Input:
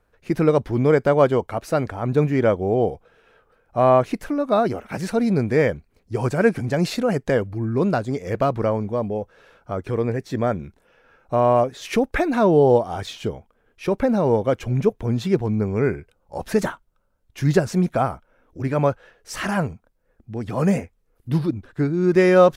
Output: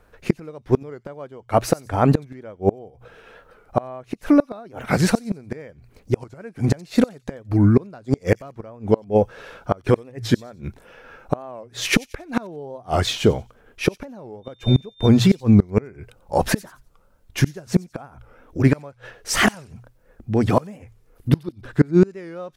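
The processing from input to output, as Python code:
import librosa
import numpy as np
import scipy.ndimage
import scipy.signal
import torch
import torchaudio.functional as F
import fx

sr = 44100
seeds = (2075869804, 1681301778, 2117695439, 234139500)

p1 = fx.dmg_tone(x, sr, hz=3600.0, level_db=-37.0, at=(14.42, 15.07), fade=0.02)
p2 = fx.rider(p1, sr, range_db=3, speed_s=2.0)
p3 = p1 + (p2 * 10.0 ** (1.0 / 20.0))
p4 = fx.hum_notches(p3, sr, base_hz=60, count=2)
p5 = fx.gate_flip(p4, sr, shuts_db=-7.0, range_db=-30)
p6 = p5 + fx.echo_wet_highpass(p5, sr, ms=91, feedback_pct=31, hz=4400.0, wet_db=-16, dry=0)
p7 = fx.record_warp(p6, sr, rpm=45.0, depth_cents=160.0)
y = p7 * 10.0 ** (3.5 / 20.0)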